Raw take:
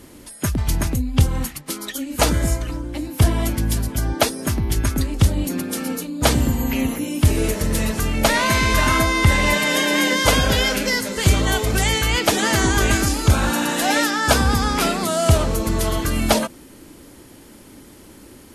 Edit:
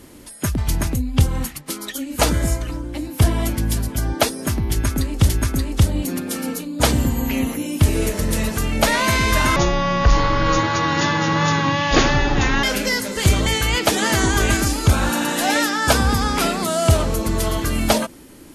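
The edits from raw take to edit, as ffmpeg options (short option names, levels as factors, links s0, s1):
-filter_complex "[0:a]asplit=5[s0][s1][s2][s3][s4];[s0]atrim=end=5.292[s5];[s1]atrim=start=4.708:end=8.984[s6];[s2]atrim=start=8.98:end=10.64,asetpts=PTS-STARTPTS,asetrate=23814,aresample=44100[s7];[s3]atrim=start=10.636:end=11.472[s8];[s4]atrim=start=11.868[s9];[s5][s6]acrossfade=d=0.004:c1=hsin:c2=hsin[s10];[s10][s7]acrossfade=d=0.004:c1=hsin:c2=hsin[s11];[s11][s8]acrossfade=d=0.004:c1=hsin:c2=hsin[s12];[s12][s9]acrossfade=d=0.004:c1=hsin:c2=hsin"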